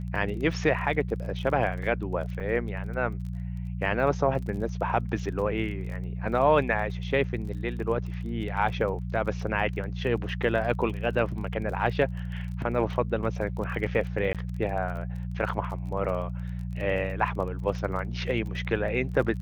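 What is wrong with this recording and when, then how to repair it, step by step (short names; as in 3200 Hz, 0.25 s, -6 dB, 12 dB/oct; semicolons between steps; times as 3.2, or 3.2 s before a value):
crackle 26/s -36 dBFS
hum 60 Hz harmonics 3 -33 dBFS
2.4 gap 3.8 ms
14.33–14.35 gap 17 ms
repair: de-click; de-hum 60 Hz, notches 3; interpolate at 2.4, 3.8 ms; interpolate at 14.33, 17 ms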